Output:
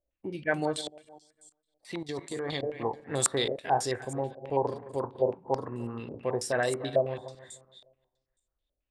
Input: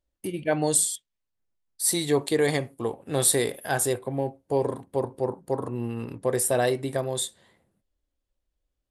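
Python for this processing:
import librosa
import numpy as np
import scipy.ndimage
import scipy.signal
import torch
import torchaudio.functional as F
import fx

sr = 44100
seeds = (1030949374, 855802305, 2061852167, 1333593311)

y = fx.reverse_delay_fb(x, sr, ms=150, feedback_pct=47, wet_db=-12)
y = fx.level_steps(y, sr, step_db=14, at=(0.81, 2.63))
y = fx.filter_held_lowpass(y, sr, hz=9.2, low_hz=620.0, high_hz=7500.0)
y = y * 10.0 ** (-6.0 / 20.0)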